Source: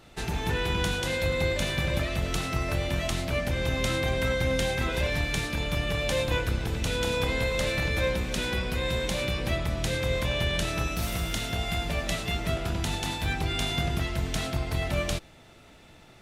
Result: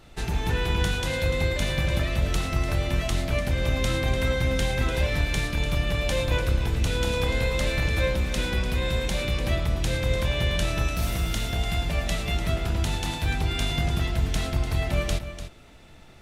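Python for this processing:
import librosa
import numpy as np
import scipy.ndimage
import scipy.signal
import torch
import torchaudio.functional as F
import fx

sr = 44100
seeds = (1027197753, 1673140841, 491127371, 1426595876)

y = fx.low_shelf(x, sr, hz=64.0, db=10.5)
y = y + 10.0 ** (-11.0 / 20.0) * np.pad(y, (int(295 * sr / 1000.0), 0))[:len(y)]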